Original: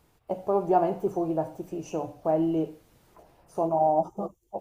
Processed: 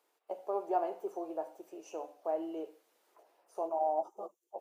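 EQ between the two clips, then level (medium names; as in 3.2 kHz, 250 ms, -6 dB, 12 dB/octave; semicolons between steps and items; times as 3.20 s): high-pass 380 Hz 24 dB/octave; -8.5 dB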